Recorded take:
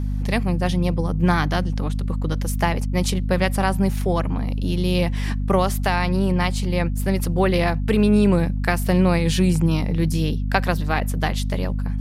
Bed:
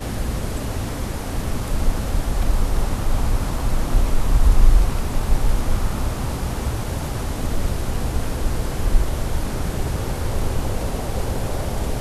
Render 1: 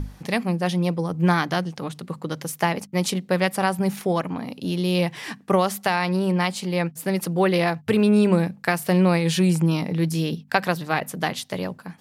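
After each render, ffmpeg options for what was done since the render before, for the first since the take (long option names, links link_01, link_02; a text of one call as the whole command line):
ffmpeg -i in.wav -af "bandreject=frequency=50:width_type=h:width=6,bandreject=frequency=100:width_type=h:width=6,bandreject=frequency=150:width_type=h:width=6,bandreject=frequency=200:width_type=h:width=6,bandreject=frequency=250:width_type=h:width=6" out.wav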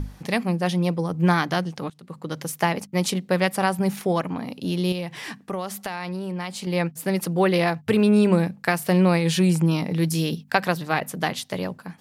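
ffmpeg -i in.wav -filter_complex "[0:a]asettb=1/sr,asplit=3[link_01][link_02][link_03];[link_01]atrim=end=4.924[link_04];[link_02]atrim=start=4.92:end=6.67,asetpts=PTS-STARTPTS,afade=type=in:duration=0.004:curve=qsin,afade=type=out:start_time=1.746:duration=0.004:curve=qsin,acompressor=threshold=-30dB:ratio=2.5:attack=3.2:release=140:knee=1:detection=peak[link_05];[link_03]atrim=start=6.666[link_06];[link_04][link_05]acrossfade=duration=0.004:curve1=hsin:curve2=qsin[link_07];[link_07][link_06]acrossfade=duration=0.004:curve1=qsin:curve2=hsin,asettb=1/sr,asplit=3[link_08][link_09][link_10];[link_08]atrim=end=9.914[link_11];[link_09]atrim=start=9.91:end=10.51,asetpts=PTS-STARTPTS,afade=type=in:duration=0.004:curve=qsin,afade=type=out:start_time=0.596:duration=0.004:curve=qsin,highshelf=frequency=4300:gain=6[link_12];[link_10]atrim=start=10.506[link_13];[link_11][link_12]acrossfade=duration=0.004:curve1=hsin:curve2=qsin[link_14];[link_14][link_13]acrossfade=duration=0.004:curve1=qsin:curve2=hsin,asplit=2[link_15][link_16];[link_15]atrim=end=1.9,asetpts=PTS-STARTPTS,afade=type=out:start_time=1.896:duration=0.004:curve=hsin:silence=0.0841395[link_17];[link_16]atrim=start=1.9,asetpts=PTS-STARTPTS,afade=type=in:duration=0.5:silence=0.0841395[link_18];[link_17][link_18]concat=n=2:v=0:a=1" out.wav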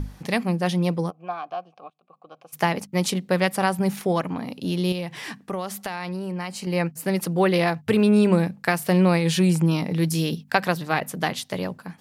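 ffmpeg -i in.wav -filter_complex "[0:a]asplit=3[link_01][link_02][link_03];[link_01]afade=type=out:start_time=1.09:duration=0.02[link_04];[link_02]asplit=3[link_05][link_06][link_07];[link_05]bandpass=frequency=730:width_type=q:width=8,volume=0dB[link_08];[link_06]bandpass=frequency=1090:width_type=q:width=8,volume=-6dB[link_09];[link_07]bandpass=frequency=2440:width_type=q:width=8,volume=-9dB[link_10];[link_08][link_09][link_10]amix=inputs=3:normalize=0,afade=type=in:start_time=1.09:duration=0.02,afade=type=out:start_time=2.52:duration=0.02[link_11];[link_03]afade=type=in:start_time=2.52:duration=0.02[link_12];[link_04][link_11][link_12]amix=inputs=3:normalize=0,asettb=1/sr,asplit=3[link_13][link_14][link_15];[link_13]atrim=end=6.144[link_16];[link_14]atrim=start=6.14:end=7.04,asetpts=PTS-STARTPTS,afade=type=in:duration=0.004:curve=qsin,afade=type=out:start_time=0.896:duration=0.004:curve=qsin,bandreject=frequency=3500:width=5.2[link_17];[link_15]atrim=start=7.036[link_18];[link_16][link_17]acrossfade=duration=0.004:curve1=hsin:curve2=qsin[link_19];[link_19][link_18]acrossfade=duration=0.004:curve1=qsin:curve2=hsin" out.wav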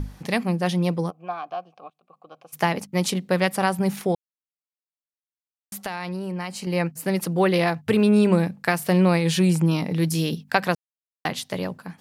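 ffmpeg -i in.wav -filter_complex "[0:a]asplit=5[link_01][link_02][link_03][link_04][link_05];[link_01]atrim=end=4.15,asetpts=PTS-STARTPTS,afade=type=out:start_time=4.146:duration=0.004:curve=hsin[link_06];[link_02]atrim=start=4.15:end=5.72,asetpts=PTS-STARTPTS,volume=0[link_07];[link_03]atrim=start=5.72:end=10.75,asetpts=PTS-STARTPTS,afade=type=in:duration=0.004:curve=hsin,afade=type=out:start_time=5.026:duration=0.004:curve=hsin[link_08];[link_04]atrim=start=10.75:end=11.25,asetpts=PTS-STARTPTS,volume=0[link_09];[link_05]atrim=start=11.25,asetpts=PTS-STARTPTS,afade=type=in:duration=0.004:curve=hsin[link_10];[link_06][link_07][link_08][link_09][link_10]concat=n=5:v=0:a=1" out.wav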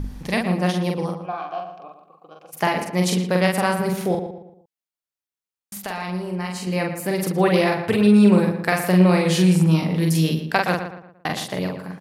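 ffmpeg -i in.wav -filter_complex "[0:a]asplit=2[link_01][link_02];[link_02]adelay=44,volume=-3dB[link_03];[link_01][link_03]amix=inputs=2:normalize=0,asplit=2[link_04][link_05];[link_05]adelay=116,lowpass=frequency=2600:poles=1,volume=-8.5dB,asplit=2[link_06][link_07];[link_07]adelay=116,lowpass=frequency=2600:poles=1,volume=0.4,asplit=2[link_08][link_09];[link_09]adelay=116,lowpass=frequency=2600:poles=1,volume=0.4,asplit=2[link_10][link_11];[link_11]adelay=116,lowpass=frequency=2600:poles=1,volume=0.4[link_12];[link_04][link_06][link_08][link_10][link_12]amix=inputs=5:normalize=0" out.wav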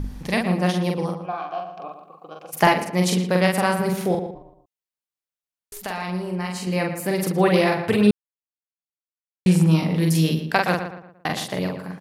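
ffmpeg -i in.wav -filter_complex "[0:a]asettb=1/sr,asplit=3[link_01][link_02][link_03];[link_01]atrim=end=1.774[link_04];[link_02]atrim=start=1.77:end=2.74,asetpts=PTS-STARTPTS,afade=type=in:duration=0.004:curve=qsin,afade=type=out:start_time=0.966:duration=0.004:curve=qsin,acontrast=35[link_05];[link_03]atrim=start=2.736[link_06];[link_04][link_05]acrossfade=duration=0.004:curve1=hsin:curve2=qsin[link_07];[link_07][link_06]acrossfade=duration=0.004:curve1=qsin:curve2=hsin,asplit=3[link_08][link_09][link_10];[link_08]afade=type=out:start_time=4.34:duration=0.02[link_11];[link_09]aeval=exprs='val(0)*sin(2*PI*210*n/s)':channel_layout=same,afade=type=in:start_time=4.34:duration=0.02,afade=type=out:start_time=5.81:duration=0.02[link_12];[link_10]afade=type=in:start_time=5.81:duration=0.02[link_13];[link_11][link_12][link_13]amix=inputs=3:normalize=0,asplit=3[link_14][link_15][link_16];[link_14]atrim=end=8.11,asetpts=PTS-STARTPTS,afade=type=out:start_time=8.106:duration=0.004:curve=hsin[link_17];[link_15]atrim=start=8.11:end=9.46,asetpts=PTS-STARTPTS,volume=0[link_18];[link_16]atrim=start=9.46,asetpts=PTS-STARTPTS,afade=type=in:duration=0.004:curve=hsin[link_19];[link_17][link_18][link_19]concat=n=3:v=0:a=1" out.wav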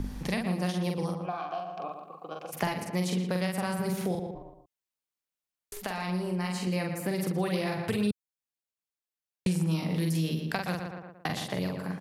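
ffmpeg -i in.wav -filter_complex "[0:a]acrossover=split=170|3800[link_01][link_02][link_03];[link_01]acompressor=threshold=-34dB:ratio=4[link_04];[link_02]acompressor=threshold=-32dB:ratio=4[link_05];[link_03]acompressor=threshold=-43dB:ratio=4[link_06];[link_04][link_05][link_06]amix=inputs=3:normalize=0" out.wav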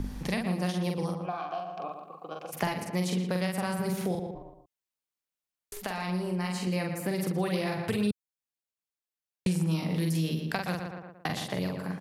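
ffmpeg -i in.wav -af anull out.wav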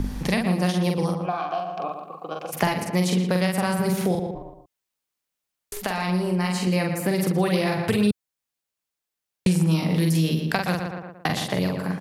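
ffmpeg -i in.wav -af "volume=7.5dB" out.wav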